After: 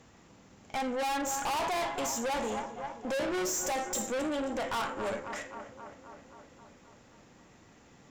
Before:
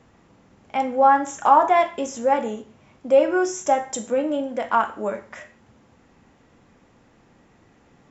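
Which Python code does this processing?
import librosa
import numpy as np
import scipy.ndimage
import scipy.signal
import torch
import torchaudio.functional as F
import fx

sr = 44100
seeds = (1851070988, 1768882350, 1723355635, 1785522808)

p1 = fx.high_shelf(x, sr, hz=3800.0, db=11.0)
p2 = p1 + fx.echo_filtered(p1, sr, ms=265, feedback_pct=69, hz=4500.0, wet_db=-17, dry=0)
y = fx.tube_stage(p2, sr, drive_db=30.0, bias=0.6)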